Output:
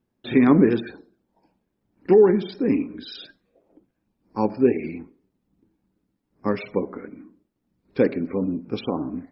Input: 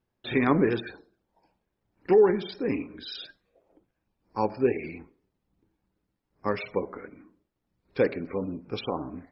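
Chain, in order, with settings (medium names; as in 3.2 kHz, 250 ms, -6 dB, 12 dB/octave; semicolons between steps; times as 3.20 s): peaking EQ 240 Hz +10 dB 1.4 oct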